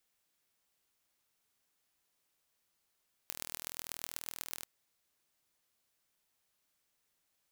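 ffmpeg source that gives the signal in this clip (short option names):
-f lavfi -i "aevalsrc='0.316*eq(mod(n,1089),0)*(0.5+0.5*eq(mod(n,5445),0))':d=1.34:s=44100"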